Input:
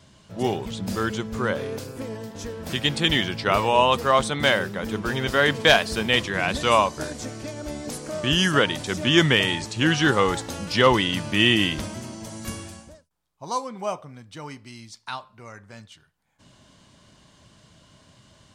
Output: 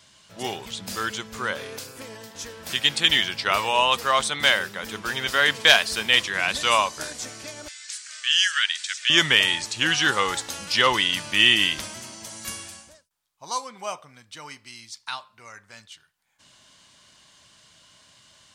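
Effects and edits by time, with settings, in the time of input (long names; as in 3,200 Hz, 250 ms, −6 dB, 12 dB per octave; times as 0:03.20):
0:07.68–0:09.10: elliptic band-pass filter 1,600–8,400 Hz, stop band 80 dB
whole clip: tilt shelving filter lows −8.5 dB, about 790 Hz; level −3.5 dB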